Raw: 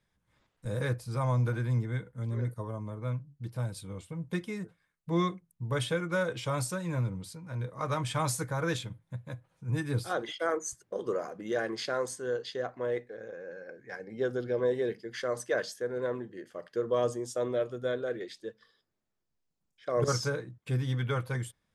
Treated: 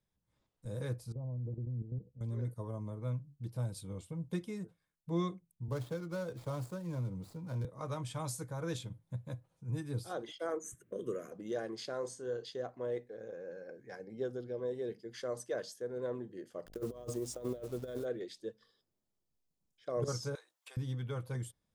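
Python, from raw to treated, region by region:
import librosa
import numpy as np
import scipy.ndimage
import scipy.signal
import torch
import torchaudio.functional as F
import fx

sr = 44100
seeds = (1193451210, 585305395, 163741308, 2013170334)

y = fx.chain(x, sr, fx.level_steps(step_db=11),
    fx.gaussian_blur(sigma=15.0), at=(1.12, 2.21))
y = fx.chain(y, sr, fx.median_filter(points=15),
    fx.high_shelf(hz=6900.0, db=4.5),
    fx.band_squash(depth_pct=40), at=(5.68, 7.65))
y = fx.chain(y, sr, fx.high_shelf(hz=9800.0, db=5.5),
    fx.fixed_phaser(hz=2000.0, stages=4),
    fx.band_squash(depth_pct=40), at=(10.64, 11.32))
y = fx.chain(y, sr, fx.lowpass(hz=7800.0, slope=12),
    fx.doubler(ms=34.0, db=-9.0), at=(12.0, 12.45))
y = fx.delta_hold(y, sr, step_db=-48.0, at=(16.65, 18.04), fade=0.02)
y = fx.over_compress(y, sr, threshold_db=-34.0, ratio=-0.5, at=(16.65, 18.04), fade=0.02)
y = fx.dmg_buzz(y, sr, base_hz=50.0, harmonics=15, level_db=-59.0, tilt_db=-5, odd_only=False, at=(16.65, 18.04), fade=0.02)
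y = fx.chain(y, sr, fx.highpass(hz=770.0, slope=24),
    fx.band_squash(depth_pct=100), at=(20.35, 20.77))
y = fx.peak_eq(y, sr, hz=1800.0, db=-8.5, octaves=1.6)
y = fx.rider(y, sr, range_db=4, speed_s=0.5)
y = y * librosa.db_to_amplitude(-5.0)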